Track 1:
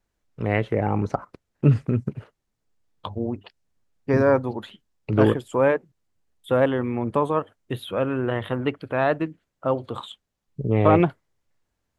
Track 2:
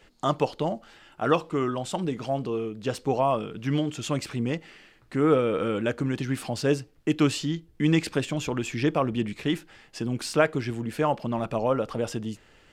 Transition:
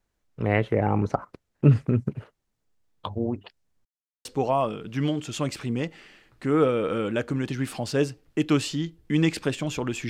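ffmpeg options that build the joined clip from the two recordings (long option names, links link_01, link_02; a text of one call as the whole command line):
ffmpeg -i cue0.wav -i cue1.wav -filter_complex "[0:a]apad=whole_dur=10.09,atrim=end=10.09,asplit=2[link_01][link_02];[link_01]atrim=end=3.85,asetpts=PTS-STARTPTS,afade=type=out:start_time=3.846:duration=0.004:curve=hsin[link_03];[link_02]atrim=start=3.85:end=4.25,asetpts=PTS-STARTPTS,volume=0[link_04];[1:a]atrim=start=2.95:end=8.79,asetpts=PTS-STARTPTS,afade=type=in:duration=0.004:curve=hsin[link_05];[link_03][link_04][link_05]concat=n=3:v=0:a=1" out.wav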